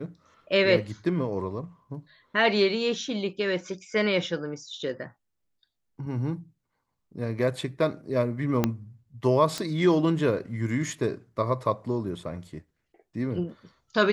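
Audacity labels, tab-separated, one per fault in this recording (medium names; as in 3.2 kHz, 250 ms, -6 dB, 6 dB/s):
8.640000	8.640000	pop -9 dBFS
9.580000	9.580000	pop -16 dBFS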